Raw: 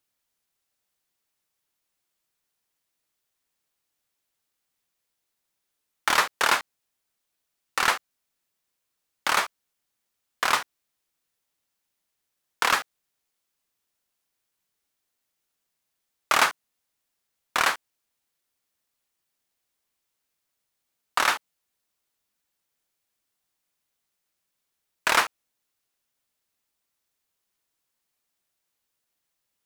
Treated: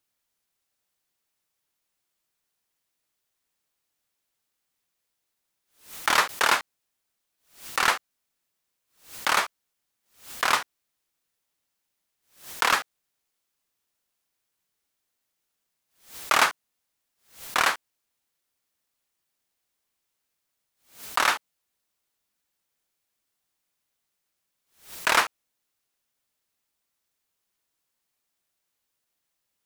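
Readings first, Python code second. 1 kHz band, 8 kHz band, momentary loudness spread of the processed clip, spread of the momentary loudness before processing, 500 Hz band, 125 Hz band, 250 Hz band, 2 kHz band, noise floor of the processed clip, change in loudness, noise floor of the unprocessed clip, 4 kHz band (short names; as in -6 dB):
+0.5 dB, +0.5 dB, 20 LU, 10 LU, +0.5 dB, +0.5 dB, +0.5 dB, +0.5 dB, -80 dBFS, 0.0 dB, -81 dBFS, +0.5 dB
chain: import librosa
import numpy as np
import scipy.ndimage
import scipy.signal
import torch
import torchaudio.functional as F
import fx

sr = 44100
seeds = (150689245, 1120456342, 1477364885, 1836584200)

y = fx.pre_swell(x, sr, db_per_s=140.0)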